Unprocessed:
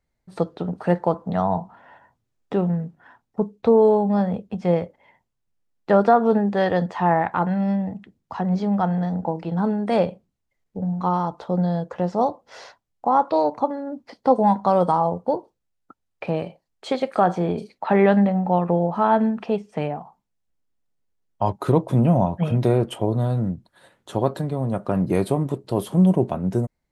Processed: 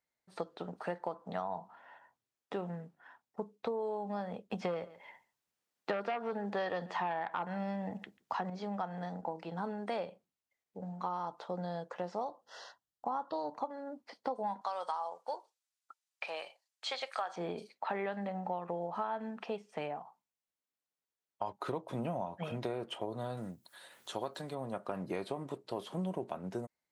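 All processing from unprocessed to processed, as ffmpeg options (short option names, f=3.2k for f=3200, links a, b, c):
-filter_complex "[0:a]asettb=1/sr,asplit=3[a][b][c];[a]atrim=end=4.504[d];[b]atrim=start=4.5:end=8.5,asetpts=PTS-STARTPTS,afade=t=in:d=0.004:c=qsin,afade=t=out:st=3.996:d=0.004:c=qsin,aeval=exprs='0.631*sin(PI/2*1.78*val(0)/0.631)':c=same,aecho=1:1:140:0.0631,atrim=end_sample=176400[e];[c]atrim=start=8.496[f];[d][e]acrossfade=d=0.004:c1=hsin:c2=qsin[g];[g][f]acrossfade=d=0.004:c1=qsin:c2=hsin,asettb=1/sr,asplit=3[h][i][j];[h]atrim=end=12.294[k];[i]atrim=start=12.29:end=13.56,asetpts=PTS-STARTPTS,afade=t=in:d=0.004:c=qsin,afade=t=out:st=1.266:d=0.004:c=qsin,asuperstop=centerf=2300:order=8:qfactor=3,asubboost=boost=9:cutoff=240[l];[j]atrim=start=13.556[m];[k][l]acrossfade=d=0.004:c1=hsin:c2=qsin[n];[n][m]acrossfade=d=0.004:c1=qsin:c2=hsin,asettb=1/sr,asplit=3[o][p][q];[o]atrim=end=14.614[r];[p]atrim=start=14.61:end=17.36,asetpts=PTS-STARTPTS,afade=t=in:d=0.004:c=qsin,afade=t=out:st=2.746:d=0.004:c=qsin,highpass=760,lowpass=7.6k,aemphasis=mode=production:type=75kf[s];[q]atrim=start=17.356[t];[r][s]acrossfade=d=0.004:c1=hsin:c2=qsin[u];[u][t]acrossfade=d=0.004:c1=qsin:c2=hsin,asettb=1/sr,asplit=3[v][w][x];[v]atrim=end=23.374[y];[w]atrim=start=23.37:end=24.55,asetpts=PTS-STARTPTS,afade=t=in:d=0.004:c=qsin,afade=t=out:st=1.176:d=0.004:c=qsin,aemphasis=mode=production:type=75fm,acompressor=mode=upward:threshold=-38dB:ratio=2.5:attack=3.2:release=140:knee=2.83:detection=peak[z];[x]atrim=start=24.546[aa];[y][z]acrossfade=d=0.004:c1=hsin:c2=qsin[ab];[ab][aa]acrossfade=d=0.004:c1=qsin:c2=hsin,acrossover=split=6100[ac][ad];[ad]acompressor=threshold=-60dB:ratio=4:attack=1:release=60[ae];[ac][ae]amix=inputs=2:normalize=0,highpass=f=790:p=1,acompressor=threshold=-27dB:ratio=10,volume=-5.5dB"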